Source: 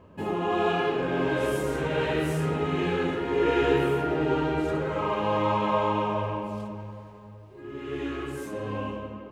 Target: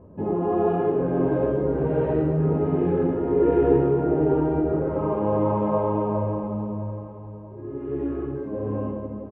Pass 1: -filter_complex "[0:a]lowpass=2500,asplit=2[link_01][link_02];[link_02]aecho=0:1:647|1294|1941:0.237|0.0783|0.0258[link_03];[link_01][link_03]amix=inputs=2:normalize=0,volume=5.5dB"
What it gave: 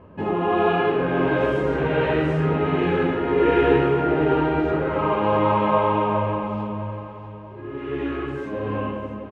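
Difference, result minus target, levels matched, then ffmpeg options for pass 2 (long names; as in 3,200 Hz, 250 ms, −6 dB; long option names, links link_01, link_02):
2,000 Hz band +14.5 dB
-filter_complex "[0:a]lowpass=630,asplit=2[link_01][link_02];[link_02]aecho=0:1:647|1294|1941:0.237|0.0783|0.0258[link_03];[link_01][link_03]amix=inputs=2:normalize=0,volume=5.5dB"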